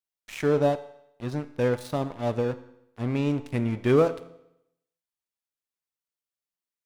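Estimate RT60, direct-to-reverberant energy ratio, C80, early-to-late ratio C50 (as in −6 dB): 0.80 s, 11.5 dB, 17.0 dB, 14.5 dB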